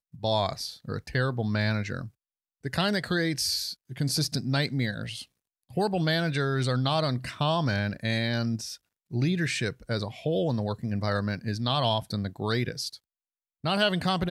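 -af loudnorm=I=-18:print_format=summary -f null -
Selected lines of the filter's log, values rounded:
Input Integrated:    -28.3 LUFS
Input True Peak:     -11.3 dBTP
Input LRA:             1.5 LU
Input Threshold:     -38.6 LUFS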